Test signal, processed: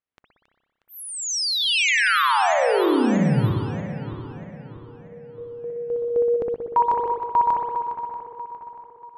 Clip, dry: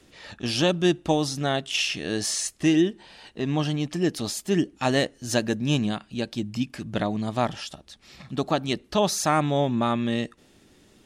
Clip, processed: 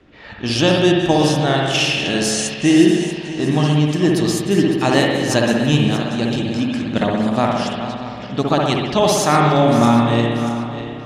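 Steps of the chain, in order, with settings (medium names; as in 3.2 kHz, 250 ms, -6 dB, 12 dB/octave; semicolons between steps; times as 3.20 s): backward echo that repeats 318 ms, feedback 63%, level -10 dB; spring tank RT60 1.3 s, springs 60 ms, chirp 65 ms, DRR -0.5 dB; level-controlled noise filter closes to 2.3 kHz, open at -19.5 dBFS; trim +5.5 dB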